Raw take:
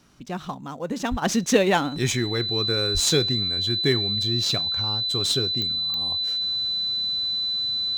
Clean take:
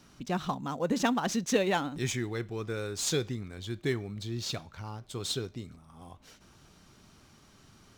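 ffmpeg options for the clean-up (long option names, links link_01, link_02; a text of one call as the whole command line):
ffmpeg -i in.wav -filter_complex "[0:a]adeclick=threshold=4,bandreject=frequency=4000:width=30,asplit=3[link_01][link_02][link_03];[link_01]afade=type=out:start_time=1.1:duration=0.02[link_04];[link_02]highpass=frequency=140:width=0.5412,highpass=frequency=140:width=1.3066,afade=type=in:start_time=1.1:duration=0.02,afade=type=out:start_time=1.22:duration=0.02[link_05];[link_03]afade=type=in:start_time=1.22:duration=0.02[link_06];[link_04][link_05][link_06]amix=inputs=3:normalize=0,asplit=3[link_07][link_08][link_09];[link_07]afade=type=out:start_time=2.93:duration=0.02[link_10];[link_08]highpass=frequency=140:width=0.5412,highpass=frequency=140:width=1.3066,afade=type=in:start_time=2.93:duration=0.02,afade=type=out:start_time=3.05:duration=0.02[link_11];[link_09]afade=type=in:start_time=3.05:duration=0.02[link_12];[link_10][link_11][link_12]amix=inputs=3:normalize=0,asetnsamples=nb_out_samples=441:pad=0,asendcmd='1.22 volume volume -8dB',volume=0dB" out.wav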